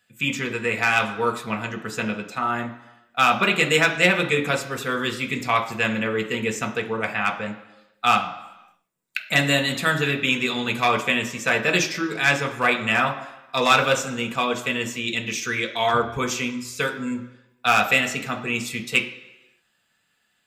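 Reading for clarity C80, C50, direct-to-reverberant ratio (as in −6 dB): 13.5 dB, 10.5 dB, 2.0 dB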